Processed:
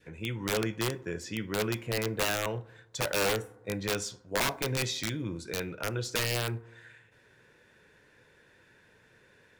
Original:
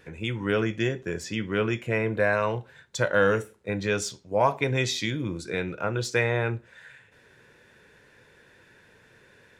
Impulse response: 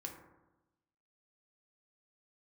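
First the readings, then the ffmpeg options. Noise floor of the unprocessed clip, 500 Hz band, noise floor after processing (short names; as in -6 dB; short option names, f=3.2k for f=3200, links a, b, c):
-58 dBFS, -7.5 dB, -62 dBFS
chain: -filter_complex "[0:a]adynamicequalizer=threshold=0.0112:dfrequency=1000:dqfactor=1.3:tfrequency=1000:tqfactor=1.3:attack=5:release=100:ratio=0.375:range=2:mode=cutabove:tftype=bell,aeval=exprs='(mod(6.68*val(0)+1,2)-1)/6.68':c=same,asplit=2[a][b];[1:a]atrim=start_sample=2205,asetrate=41454,aresample=44100[c];[b][c]afir=irnorm=-1:irlink=0,volume=-12dB[d];[a][d]amix=inputs=2:normalize=0,volume=-6dB"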